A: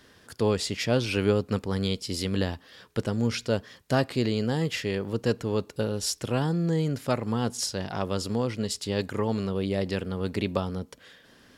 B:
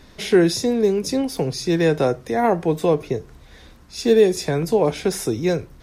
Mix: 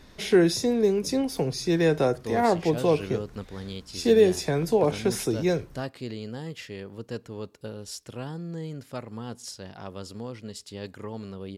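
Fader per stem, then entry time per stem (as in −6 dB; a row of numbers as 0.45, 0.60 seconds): −9.5, −4.0 decibels; 1.85, 0.00 seconds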